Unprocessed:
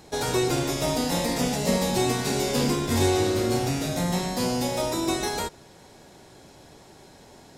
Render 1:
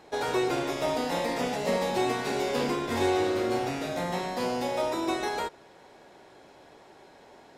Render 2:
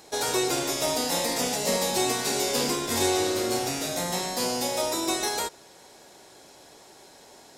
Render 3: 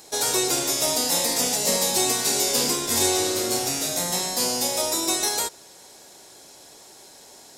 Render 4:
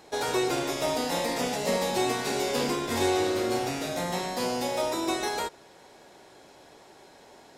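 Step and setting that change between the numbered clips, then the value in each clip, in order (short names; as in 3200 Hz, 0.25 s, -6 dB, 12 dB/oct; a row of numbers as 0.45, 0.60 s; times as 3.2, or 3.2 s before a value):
tone controls, treble: -13, +4, +12, -5 dB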